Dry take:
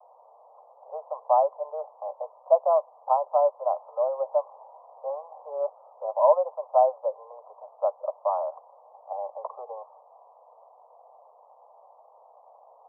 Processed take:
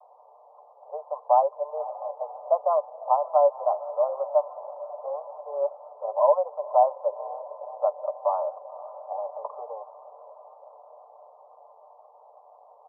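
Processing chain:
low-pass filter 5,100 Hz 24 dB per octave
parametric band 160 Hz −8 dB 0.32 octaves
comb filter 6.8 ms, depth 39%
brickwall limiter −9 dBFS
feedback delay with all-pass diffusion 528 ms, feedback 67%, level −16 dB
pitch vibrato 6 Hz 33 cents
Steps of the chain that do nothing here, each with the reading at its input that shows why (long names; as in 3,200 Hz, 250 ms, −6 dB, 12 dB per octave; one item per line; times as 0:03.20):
low-pass filter 5,100 Hz: nothing at its input above 1,200 Hz
parametric band 160 Hz: nothing at its input below 400 Hz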